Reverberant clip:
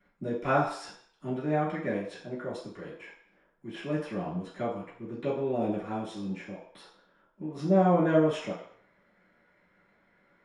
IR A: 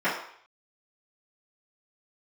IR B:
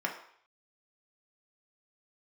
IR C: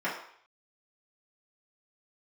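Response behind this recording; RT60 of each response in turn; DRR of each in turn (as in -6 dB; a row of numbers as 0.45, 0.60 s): A; 0.60, 0.60, 0.60 s; -15.5, -0.5, -10.0 dB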